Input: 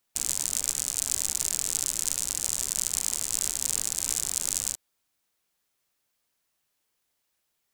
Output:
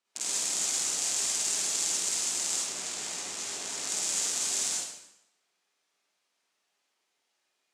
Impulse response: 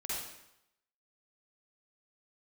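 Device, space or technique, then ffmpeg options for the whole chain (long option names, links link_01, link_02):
supermarket ceiling speaker: -filter_complex "[0:a]asettb=1/sr,asplit=3[link_01][link_02][link_03];[link_01]atrim=end=2.564[link_04];[link_02]atrim=start=2.56:end=3.82,asetpts=PTS-STARTPTS,afade=type=in:duration=0.004:curve=qsin,afade=type=out:start_time=1.256:duration=0.004:curve=qsin,highshelf=frequency=4500:gain=-10[link_05];[link_03]atrim=start=3.816[link_06];[link_04][link_05]acrossfade=duration=0.004:curve1=hsin:curve2=qsin[link_07];[link_07][link_06]acrossfade=duration=0.004:curve1=qsin:curve2=hsin,highpass=270,lowpass=6300[link_08];[1:a]atrim=start_sample=2205[link_09];[link_08][link_09]afir=irnorm=-1:irlink=0,volume=2dB"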